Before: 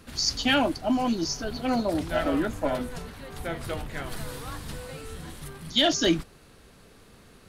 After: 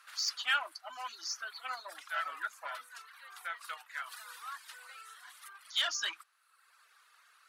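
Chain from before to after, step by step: Chebyshev shaper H 5 -21 dB, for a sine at -11.5 dBFS; ladder high-pass 1.1 kHz, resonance 50%; reverb removal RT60 1 s

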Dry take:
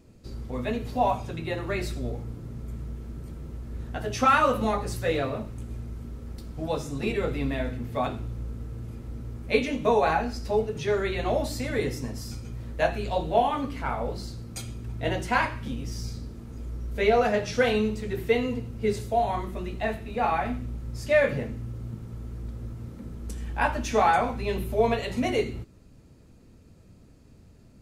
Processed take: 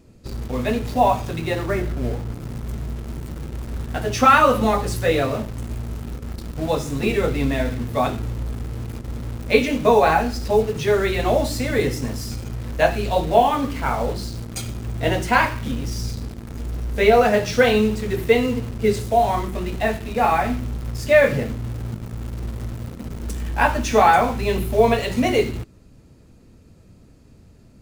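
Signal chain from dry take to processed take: 1.66–2.34 s: low-pass 1.9 kHz 24 dB/octave; in parallel at -7.5 dB: bit crusher 6-bit; on the sum: trim +4 dB

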